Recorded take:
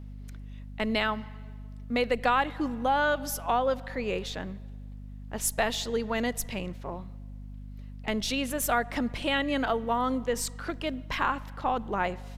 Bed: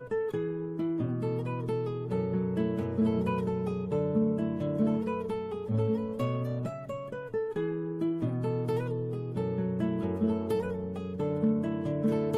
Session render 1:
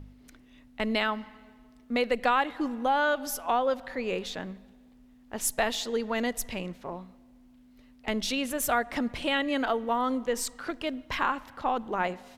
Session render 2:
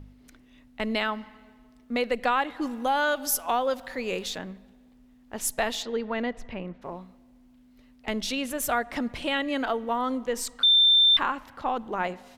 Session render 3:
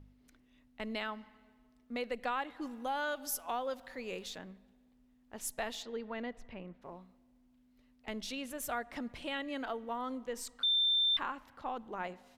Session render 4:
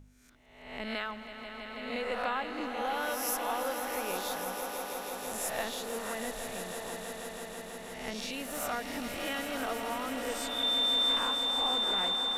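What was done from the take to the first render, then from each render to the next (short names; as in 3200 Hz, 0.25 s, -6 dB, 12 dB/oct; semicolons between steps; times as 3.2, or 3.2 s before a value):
de-hum 50 Hz, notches 4
2.62–4.38 high shelf 4400 Hz +10 dB; 5.82–6.81 LPF 4000 Hz -> 1700 Hz; 10.63–11.17 bleep 3570 Hz -15 dBFS
gain -11 dB
spectral swells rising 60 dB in 0.82 s; swelling echo 0.163 s, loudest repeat 5, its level -10 dB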